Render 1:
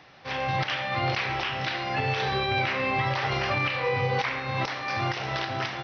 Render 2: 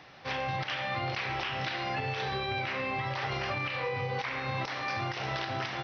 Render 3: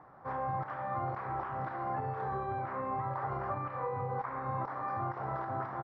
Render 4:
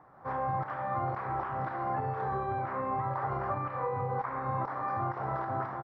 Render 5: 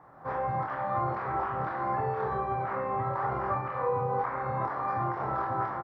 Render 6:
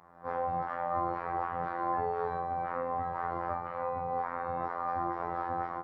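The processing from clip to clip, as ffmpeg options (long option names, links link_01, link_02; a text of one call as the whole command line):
ffmpeg -i in.wav -af "acompressor=threshold=-30dB:ratio=6" out.wav
ffmpeg -i in.wav -af "firequalizer=gain_entry='entry(510,0);entry(1100,6);entry(2700,-30)':delay=0.05:min_phase=1,volume=-3dB" out.wav
ffmpeg -i in.wav -af "dynaudnorm=framelen=130:gausssize=3:maxgain=5dB,volume=-2dB" out.wav
ffmpeg -i in.wav -af "aecho=1:1:25|43:0.668|0.376,volume=1.5dB" out.wav
ffmpeg -i in.wav -af "afftfilt=real='hypot(re,im)*cos(PI*b)':imag='0':win_size=2048:overlap=0.75" out.wav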